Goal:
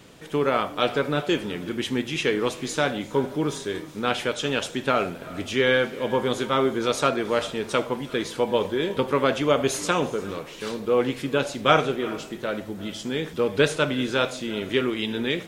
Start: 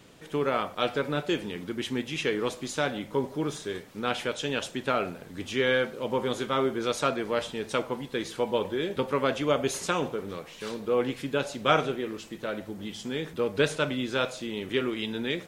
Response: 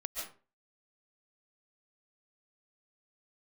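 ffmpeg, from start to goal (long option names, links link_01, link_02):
-filter_complex "[0:a]asplit=2[link_01][link_02];[1:a]atrim=start_sample=2205,asetrate=22050,aresample=44100,adelay=79[link_03];[link_02][link_03]afir=irnorm=-1:irlink=0,volume=-22dB[link_04];[link_01][link_04]amix=inputs=2:normalize=0,volume=4.5dB"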